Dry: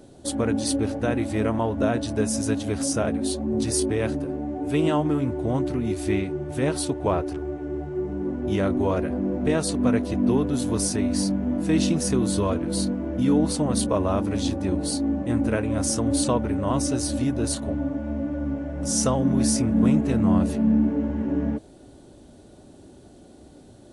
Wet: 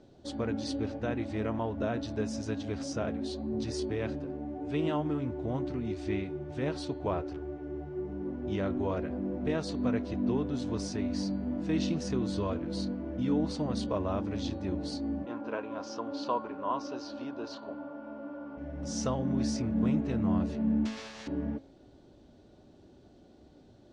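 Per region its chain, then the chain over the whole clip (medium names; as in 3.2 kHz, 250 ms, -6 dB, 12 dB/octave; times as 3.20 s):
15.25–18.56 s: whistle 1.4 kHz -47 dBFS + cabinet simulation 360–5100 Hz, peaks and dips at 1 kHz +9 dB, 2 kHz -8 dB, 3.7 kHz -4 dB
20.85–21.26 s: spectral contrast reduction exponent 0.13 + feedback comb 110 Hz, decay 0.33 s, mix 90%
whole clip: low-pass 5.7 kHz 24 dB/octave; de-hum 272.7 Hz, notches 17; trim -8.5 dB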